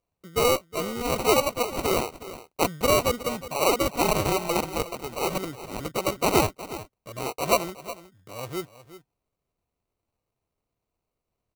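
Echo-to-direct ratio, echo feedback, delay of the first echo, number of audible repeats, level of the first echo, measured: -15.0 dB, no steady repeat, 0.365 s, 1, -15.0 dB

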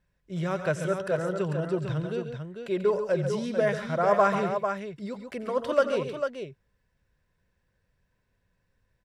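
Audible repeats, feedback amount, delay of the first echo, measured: 3, no steady repeat, 86 ms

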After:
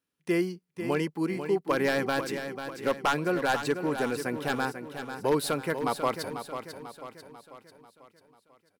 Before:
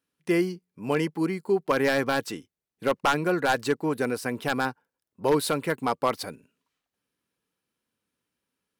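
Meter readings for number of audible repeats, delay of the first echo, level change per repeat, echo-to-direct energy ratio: 5, 0.493 s, -6.0 dB, -8.0 dB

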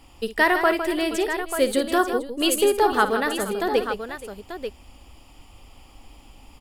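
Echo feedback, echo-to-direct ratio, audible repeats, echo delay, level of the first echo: no steady repeat, -5.5 dB, 4, 56 ms, -13.0 dB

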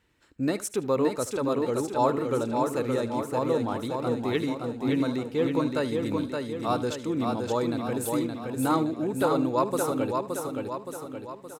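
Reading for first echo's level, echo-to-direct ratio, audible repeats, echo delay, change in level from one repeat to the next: -17.0 dB, -2.5 dB, 11, 76 ms, no steady repeat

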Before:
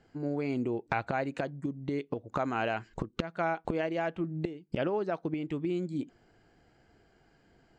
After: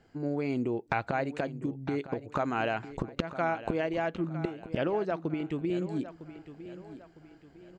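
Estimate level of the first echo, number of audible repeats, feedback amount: -14.0 dB, 3, 39%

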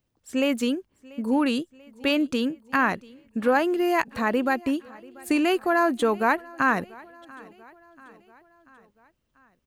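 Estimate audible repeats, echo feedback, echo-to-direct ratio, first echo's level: 3, 56%, -21.5 dB, -23.0 dB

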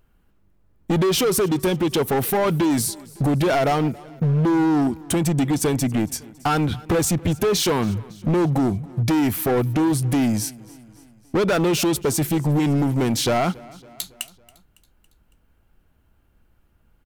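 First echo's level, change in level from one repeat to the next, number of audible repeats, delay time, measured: -22.5 dB, -5.0 dB, 3, 0.278 s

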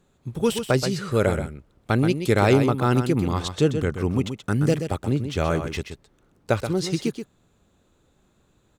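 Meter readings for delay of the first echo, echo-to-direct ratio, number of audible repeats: 0.128 s, -8.5 dB, 1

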